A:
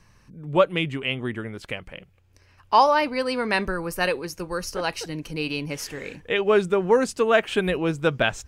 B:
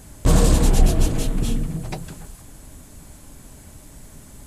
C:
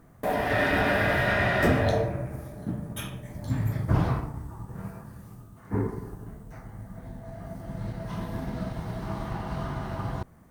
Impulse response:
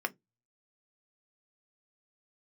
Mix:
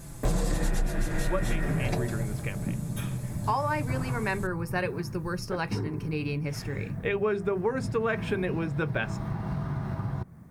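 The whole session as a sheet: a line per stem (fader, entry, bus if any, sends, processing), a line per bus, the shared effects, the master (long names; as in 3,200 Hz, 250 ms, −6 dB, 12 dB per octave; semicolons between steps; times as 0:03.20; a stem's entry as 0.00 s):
−10.5 dB, 0.75 s, bus A, send −3.5 dB, low-shelf EQ 250 Hz +9.5 dB
−4.0 dB, 0.00 s, no bus, no send, comb filter 5.9 ms, depth 90%
−3.0 dB, 0.00 s, bus A, send −16 dB, no processing
bus A: 0.0 dB, parametric band 140 Hz +13 dB 1.9 octaves; downward compressor, threshold −28 dBFS, peak gain reduction 17 dB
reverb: on, RT60 0.15 s, pre-delay 3 ms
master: notch filter 3,000 Hz, Q 12; downward compressor 16 to 1, threshold −22 dBFS, peak gain reduction 14 dB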